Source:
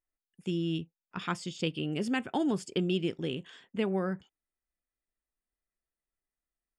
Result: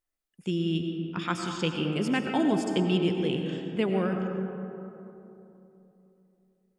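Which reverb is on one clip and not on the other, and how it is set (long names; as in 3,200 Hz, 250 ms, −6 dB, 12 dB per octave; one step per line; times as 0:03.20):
comb and all-pass reverb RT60 3.2 s, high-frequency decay 0.35×, pre-delay 60 ms, DRR 3.5 dB
level +3 dB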